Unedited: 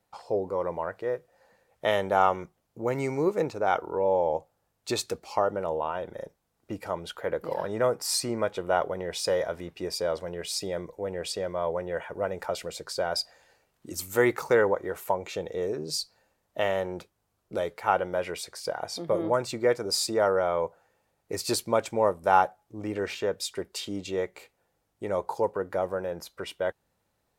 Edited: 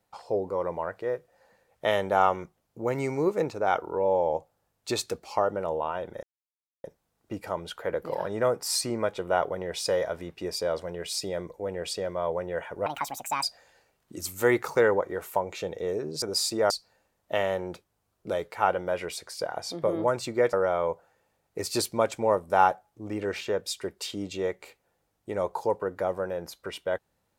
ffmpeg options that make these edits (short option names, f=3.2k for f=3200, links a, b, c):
-filter_complex "[0:a]asplit=7[a][b][c][d][e][f][g];[a]atrim=end=6.23,asetpts=PTS-STARTPTS,afade=t=out:st=6.226:d=0.004:c=hsin,apad=pad_dur=0.61[h];[b]atrim=start=6.23:end=12.254,asetpts=PTS-STARTPTS,afade=t=in:d=0.004:c=hsin[i];[c]atrim=start=12.25:end=13.17,asetpts=PTS-STARTPTS,asetrate=71001,aresample=44100[j];[d]atrim=start=13.166:end=15.962[k];[e]atrim=start=19.788:end=20.272[l];[f]atrim=start=15.958:end=19.792[m];[g]atrim=start=20.268[n];[h][i]concat=n=2:v=0:a=1[o];[o][j]acrossfade=d=0.004:c1=hsin:c2=hsin[p];[p][k]acrossfade=d=0.004:c1=hsin:c2=hsin[q];[q][l]acrossfade=d=0.004:c1=hsin:c2=hsin[r];[r][m]acrossfade=d=0.004:c1=hsin:c2=hsin[s];[s][n]acrossfade=d=0.004:c1=hsin:c2=hsin"